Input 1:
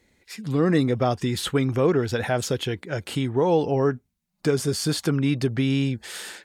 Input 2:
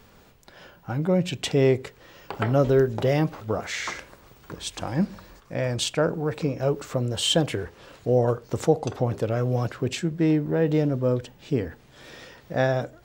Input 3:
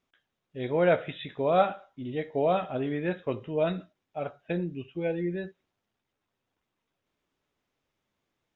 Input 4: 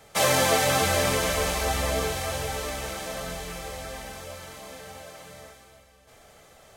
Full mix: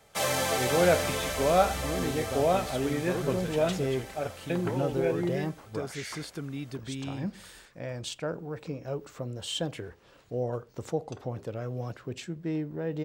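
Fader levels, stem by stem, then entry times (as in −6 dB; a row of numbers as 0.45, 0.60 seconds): −14.5, −10.5, 0.0, −6.5 decibels; 1.30, 2.25, 0.00, 0.00 seconds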